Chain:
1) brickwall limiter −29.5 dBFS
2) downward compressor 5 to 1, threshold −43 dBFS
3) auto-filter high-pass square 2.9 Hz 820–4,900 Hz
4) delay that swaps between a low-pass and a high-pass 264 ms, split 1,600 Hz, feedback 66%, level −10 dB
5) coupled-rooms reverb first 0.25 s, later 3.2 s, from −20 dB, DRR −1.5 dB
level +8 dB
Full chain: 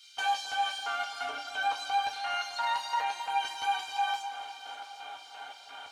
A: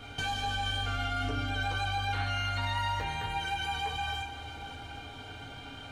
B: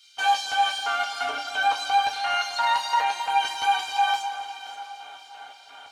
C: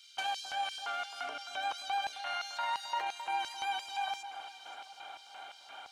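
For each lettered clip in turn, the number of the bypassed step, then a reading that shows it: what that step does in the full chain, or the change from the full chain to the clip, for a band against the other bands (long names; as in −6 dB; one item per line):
3, 1 kHz band −4.5 dB
2, change in momentary loudness spread +4 LU
5, change in integrated loudness −4.5 LU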